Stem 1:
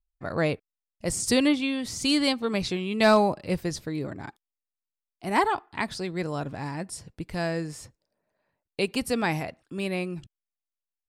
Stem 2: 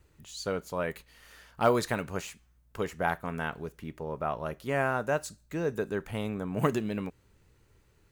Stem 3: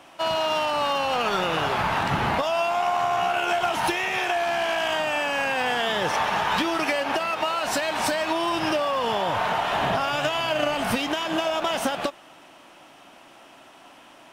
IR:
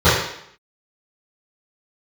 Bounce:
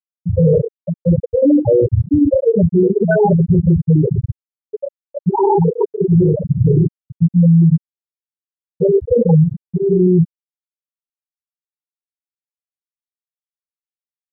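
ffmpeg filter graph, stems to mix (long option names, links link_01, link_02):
-filter_complex "[0:a]equalizer=frequency=8400:width_type=o:width=0.76:gain=-8,bandreject=frequency=242:width_type=h:width=4,bandreject=frequency=484:width_type=h:width=4,bandreject=frequency=726:width_type=h:width=4,asoftclip=type=tanh:threshold=-26.5dB,volume=-2dB,asplit=2[link_01][link_02];[link_02]volume=-4dB[link_03];[1:a]adynamicequalizer=threshold=0.00501:dfrequency=900:dqfactor=4.2:tfrequency=900:tqfactor=4.2:attack=5:release=100:ratio=0.375:range=1.5:mode=cutabove:tftype=bell,acrusher=bits=6:mode=log:mix=0:aa=0.000001,volume=1.5dB,asplit=3[link_04][link_05][link_06];[link_05]volume=-15dB[link_07];[2:a]equalizer=frequency=125:width_type=o:width=1:gain=-4,equalizer=frequency=1000:width_type=o:width=1:gain=-9,equalizer=frequency=4000:width_type=o:width=1:gain=-11,volume=0.5dB,asplit=2[link_08][link_09];[link_09]volume=-20dB[link_10];[link_06]apad=whole_len=631814[link_11];[link_08][link_11]sidechaincompress=threshold=-34dB:ratio=5:attack=12:release=956[link_12];[3:a]atrim=start_sample=2205[link_13];[link_03][link_07][link_10]amix=inputs=3:normalize=0[link_14];[link_14][link_13]afir=irnorm=-1:irlink=0[link_15];[link_01][link_04][link_12][link_15]amix=inputs=4:normalize=0,afftfilt=real='re*gte(hypot(re,im),2.24)':imag='im*gte(hypot(re,im),2.24)':win_size=1024:overlap=0.75,alimiter=limit=-5.5dB:level=0:latency=1:release=26"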